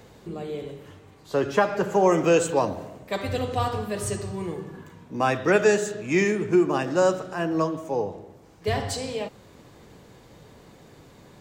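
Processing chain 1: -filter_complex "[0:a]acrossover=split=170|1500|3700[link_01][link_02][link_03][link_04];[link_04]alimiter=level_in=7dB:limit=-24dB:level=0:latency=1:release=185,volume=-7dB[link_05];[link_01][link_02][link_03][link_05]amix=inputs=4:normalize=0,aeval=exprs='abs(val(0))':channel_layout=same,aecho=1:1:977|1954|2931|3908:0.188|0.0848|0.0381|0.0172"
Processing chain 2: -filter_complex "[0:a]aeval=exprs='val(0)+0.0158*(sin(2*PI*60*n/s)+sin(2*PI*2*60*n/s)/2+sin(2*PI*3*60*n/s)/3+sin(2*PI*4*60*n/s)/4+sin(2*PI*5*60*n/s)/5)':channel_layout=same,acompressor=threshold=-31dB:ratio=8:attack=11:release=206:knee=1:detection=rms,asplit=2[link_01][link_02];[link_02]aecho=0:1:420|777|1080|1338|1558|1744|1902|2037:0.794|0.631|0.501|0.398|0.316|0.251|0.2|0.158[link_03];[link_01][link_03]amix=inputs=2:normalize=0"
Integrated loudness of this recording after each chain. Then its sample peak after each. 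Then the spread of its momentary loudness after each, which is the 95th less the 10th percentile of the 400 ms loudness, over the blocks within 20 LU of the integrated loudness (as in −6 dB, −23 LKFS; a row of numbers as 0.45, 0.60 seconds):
−29.0, −33.0 LKFS; −7.5, −18.5 dBFS; 19, 5 LU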